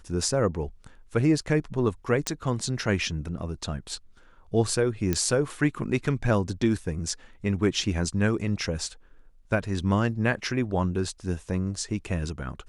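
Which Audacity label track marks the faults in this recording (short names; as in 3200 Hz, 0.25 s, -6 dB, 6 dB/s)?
2.270000	2.270000	pop -10 dBFS
5.130000	5.130000	pop -11 dBFS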